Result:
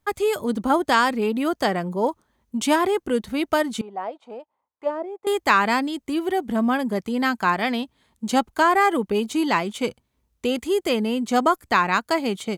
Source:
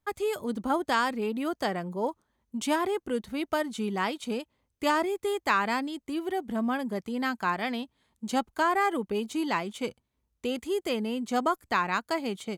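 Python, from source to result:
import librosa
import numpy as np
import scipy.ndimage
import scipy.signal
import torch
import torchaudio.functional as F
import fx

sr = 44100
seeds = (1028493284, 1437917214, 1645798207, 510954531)

y = fx.auto_wah(x, sr, base_hz=500.0, top_hz=1000.0, q=3.7, full_db=-21.0, direction='down', at=(3.81, 5.27))
y = y * librosa.db_to_amplitude(7.5)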